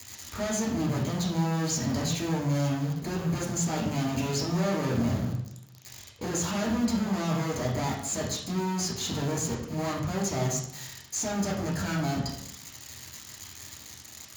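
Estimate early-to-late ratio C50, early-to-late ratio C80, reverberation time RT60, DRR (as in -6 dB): 4.0 dB, 7.5 dB, 0.75 s, -4.5 dB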